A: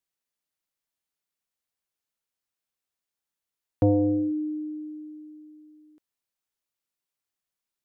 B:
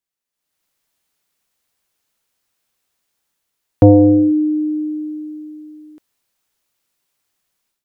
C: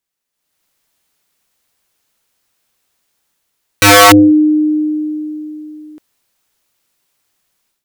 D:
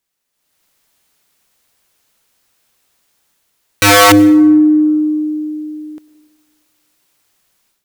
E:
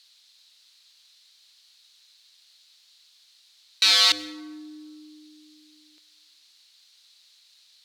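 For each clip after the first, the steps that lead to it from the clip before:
level rider gain up to 15.5 dB
integer overflow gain 7.5 dB; trim +6.5 dB
peak limiter -7.5 dBFS, peak gain reduction 6.5 dB; on a send at -16.5 dB: reverberation RT60 1.5 s, pre-delay 88 ms; on the sum: trim +4.5 dB
in parallel at -10 dB: word length cut 6-bit, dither triangular; on the sum: band-pass filter 4.1 kHz, Q 4.6

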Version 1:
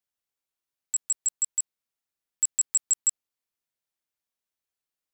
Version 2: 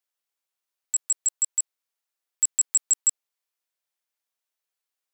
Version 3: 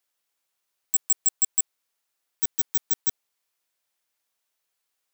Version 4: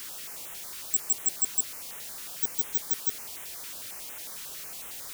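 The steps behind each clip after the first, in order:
high-pass 450 Hz; trim +2.5 dB
wavefolder -21 dBFS; trim +7 dB
jump at every zero crossing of -28.5 dBFS; step-sequenced notch 11 Hz 680–4600 Hz; trim -4.5 dB

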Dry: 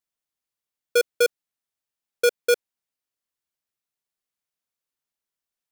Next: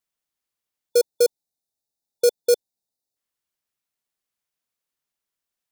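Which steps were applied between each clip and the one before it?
time-frequency box 0.90–3.16 s, 910–3500 Hz -16 dB; trim +2.5 dB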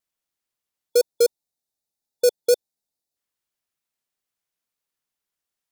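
vibrato 7.2 Hz 41 cents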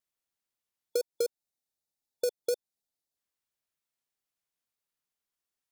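compression 5:1, threshold -23 dBFS, peak gain reduction 8.5 dB; trim -4.5 dB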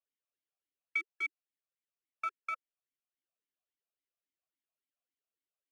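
ring modulator 1.8 kHz; talking filter a-i 3.6 Hz; trim +8 dB

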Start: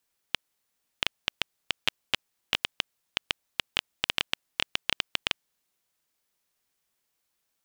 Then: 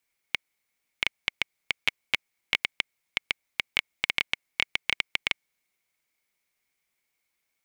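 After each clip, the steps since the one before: peaking EQ 2.2 kHz +15 dB 0.24 oct; trim -2.5 dB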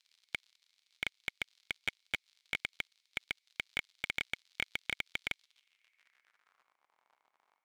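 crackle 80 per s -49 dBFS; band-pass sweep 4 kHz -> 950 Hz, 5.39–6.80 s; slew-rate limiter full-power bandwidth 66 Hz; trim +8 dB

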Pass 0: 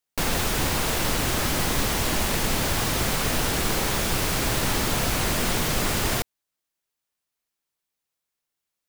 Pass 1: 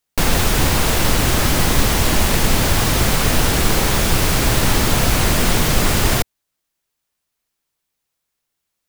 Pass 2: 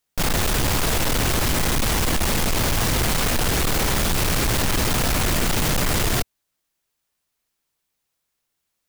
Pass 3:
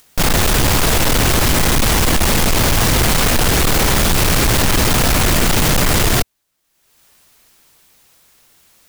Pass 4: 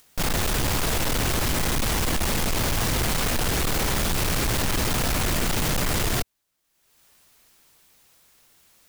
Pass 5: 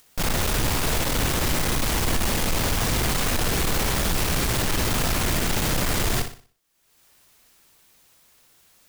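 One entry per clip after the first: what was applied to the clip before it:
bass shelf 140 Hz +5.5 dB; trim +6.5 dB
hard clipper -18 dBFS, distortion -7 dB
upward compressor, threshold -43 dBFS; trim +7 dB
peak limiter -15 dBFS, peak gain reduction 4 dB; trim -6 dB
flutter echo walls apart 10.4 m, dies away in 0.41 s

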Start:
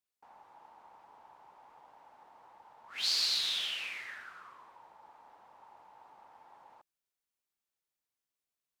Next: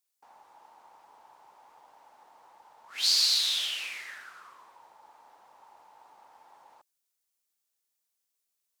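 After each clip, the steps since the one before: tone controls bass -6 dB, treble +9 dB; trim +1 dB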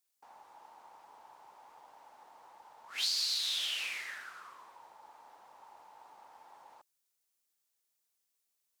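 compression 4:1, threshold -31 dBFS, peak gain reduction 9.5 dB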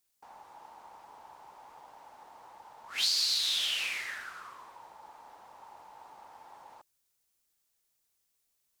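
bass shelf 150 Hz +10.5 dB; trim +4 dB

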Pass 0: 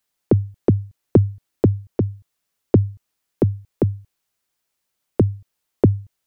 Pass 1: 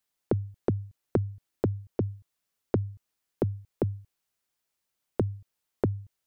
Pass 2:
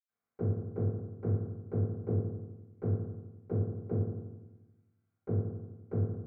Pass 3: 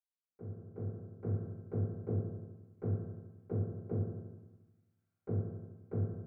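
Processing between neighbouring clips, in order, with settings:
compression 4:1, threshold -18 dBFS, peak gain reduction 8.5 dB; trim -5.5 dB
peak limiter -20.5 dBFS, peak gain reduction 10.5 dB; reverberation RT60 1.1 s, pre-delay 76 ms; trim -4.5 dB
fade-in on the opening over 1.48 s; thinning echo 72 ms, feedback 72%, high-pass 190 Hz, level -11 dB; trim -3.5 dB

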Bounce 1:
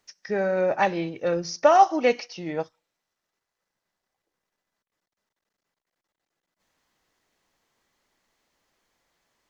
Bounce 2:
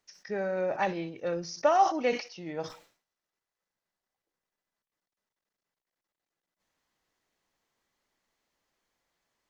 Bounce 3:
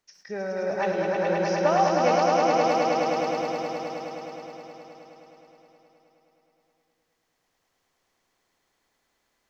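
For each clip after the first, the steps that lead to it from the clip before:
decay stretcher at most 130 dB/s; trim -7 dB
echo with a slow build-up 105 ms, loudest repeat 5, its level -3.5 dB

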